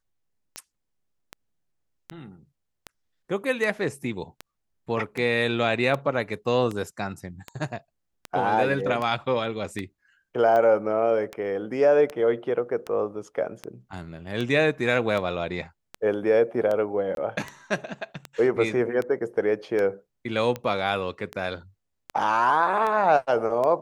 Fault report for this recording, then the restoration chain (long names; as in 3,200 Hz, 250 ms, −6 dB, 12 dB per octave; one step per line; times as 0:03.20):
scratch tick 78 rpm −17 dBFS
0:17.15–0:17.17: drop-out 22 ms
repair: click removal
repair the gap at 0:17.15, 22 ms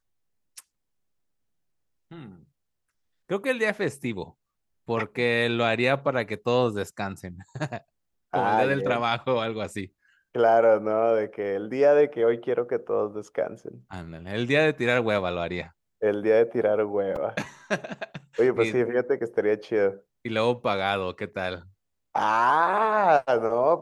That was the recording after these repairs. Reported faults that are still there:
none of them is left